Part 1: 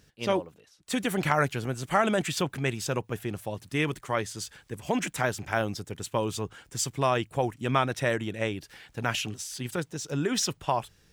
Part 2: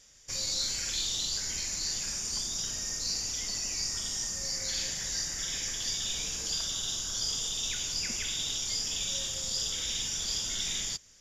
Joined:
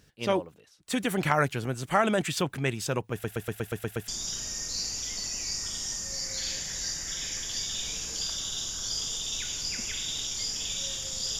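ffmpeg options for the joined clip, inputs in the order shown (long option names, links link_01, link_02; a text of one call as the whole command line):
ffmpeg -i cue0.wav -i cue1.wav -filter_complex "[0:a]apad=whole_dur=11.39,atrim=end=11.39,asplit=8[link_01][link_02][link_03][link_04][link_05][link_06][link_07][link_08];[link_01]atrim=end=3.242[link_09];[link_02]atrim=start=3.118:end=3.242[link_10];[link_03]atrim=start=3.118:end=3.242[link_11];[link_04]atrim=start=3.118:end=3.242[link_12];[link_05]atrim=start=3.118:end=3.242[link_13];[link_06]atrim=start=3.118:end=3.242[link_14];[link_07]atrim=start=3.118:end=3.242[link_15];[link_08]atrim=start=3.118:end=3.242[link_16];[1:a]atrim=start=2.388:end=9.7[link_17];[link_09][link_10]acrossfade=duration=0.004:curve1=hsin:curve2=hsin[link_18];[link_18][link_11]acrossfade=duration=0.004:curve1=hsin:curve2=hsin[link_19];[link_19][link_12]acrossfade=duration=0.004:curve1=hsin:curve2=hsin[link_20];[link_20][link_13]acrossfade=duration=0.004:curve1=hsin:curve2=hsin[link_21];[link_21][link_14]acrossfade=duration=0.004:curve1=hsin:curve2=hsin[link_22];[link_22][link_15]acrossfade=duration=0.004:curve1=hsin:curve2=hsin[link_23];[link_23][link_16]acrossfade=duration=0.004:curve1=hsin:curve2=hsin[link_24];[link_24][link_17]acrossfade=duration=0.004:curve1=hsin:curve2=hsin" out.wav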